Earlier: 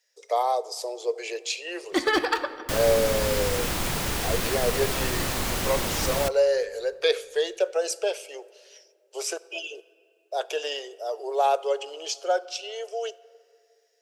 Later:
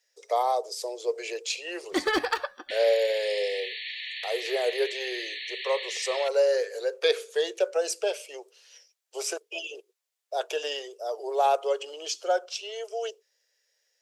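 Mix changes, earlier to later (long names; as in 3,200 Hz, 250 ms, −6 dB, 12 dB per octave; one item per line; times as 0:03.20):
second sound: add linear-phase brick-wall band-pass 1,700–4,500 Hz
reverb: off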